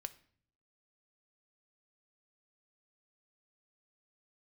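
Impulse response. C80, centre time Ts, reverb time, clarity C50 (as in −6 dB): 21.0 dB, 4 ms, 0.55 s, 17.0 dB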